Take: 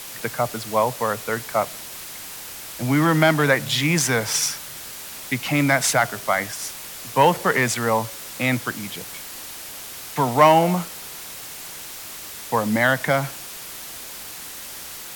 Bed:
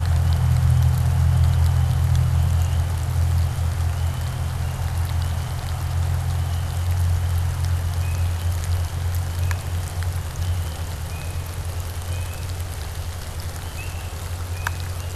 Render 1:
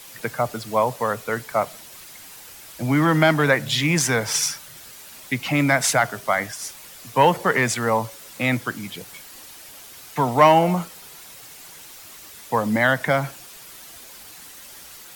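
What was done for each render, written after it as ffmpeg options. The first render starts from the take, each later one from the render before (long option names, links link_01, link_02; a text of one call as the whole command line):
ffmpeg -i in.wav -af "afftdn=noise_reduction=8:noise_floor=-37" out.wav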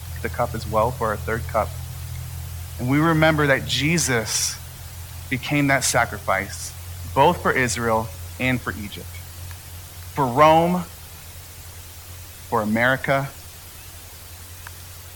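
ffmpeg -i in.wav -i bed.wav -filter_complex "[1:a]volume=-14dB[link_01];[0:a][link_01]amix=inputs=2:normalize=0" out.wav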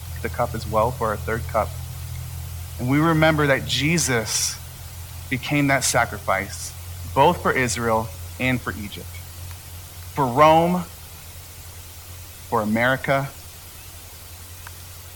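ffmpeg -i in.wav -af "bandreject=frequency=1700:width=12" out.wav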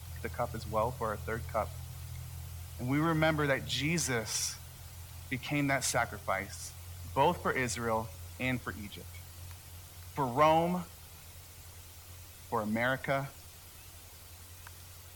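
ffmpeg -i in.wav -af "volume=-11.5dB" out.wav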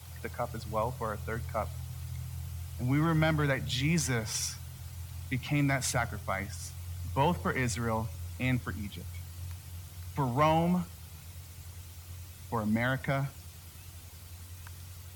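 ffmpeg -i in.wav -af "highpass=78,asubboost=boost=2.5:cutoff=250" out.wav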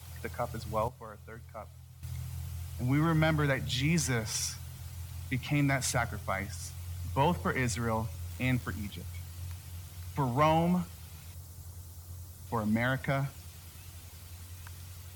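ffmpeg -i in.wav -filter_complex "[0:a]asettb=1/sr,asplit=3[link_01][link_02][link_03];[link_01]atrim=end=8.304[link_04];[link_02]atrim=start=8.3:end=8.91,asetpts=PTS-STARTPTS,afade=type=in:duration=0.004:curve=qsin,afade=type=out:start_time=0.606:duration=0.004:curve=qsin,acrusher=bits=9:dc=4:mix=0:aa=0.000001[link_05];[link_03]atrim=start=8.906[link_06];[link_04][link_05]acrossfade=duration=0.004:curve1=hsin:curve2=qsin[link_07];[link_07][link_06]acrossfade=duration=0.004:curve1=qsin:curve2=hsin,asettb=1/sr,asplit=3[link_08][link_09][link_10];[link_08]atrim=end=11.344[link_11];[link_09]atrim=start=11.34:end=12.47,asetpts=PTS-STARTPTS,afade=type=in:duration=0.004:curve=qsin,afade=type=out:start_time=1.126:duration=0.004:curve=qsin,equalizer=frequency=2500:width_type=o:width=1.2:gain=-11.5[link_12];[link_10]atrim=start=12.466[link_13];[link_11][link_12]acrossfade=duration=0.004:curve1=hsin:curve2=qsin[link_14];[link_14][link_13]acrossfade=duration=0.004:curve1=qsin:curve2=hsin,asplit=3[link_15][link_16][link_17];[link_15]atrim=end=0.882[link_18];[link_16]atrim=start=0.878:end=2.032,asetpts=PTS-STARTPTS,volume=-11dB[link_19];[link_17]atrim=start=2.028[link_20];[link_18][link_19]acrossfade=duration=0.004:curve1=hsin:curve2=hsin[link_21];[link_21][link_20]acrossfade=duration=0.004:curve1=hsin:curve2=hsin" out.wav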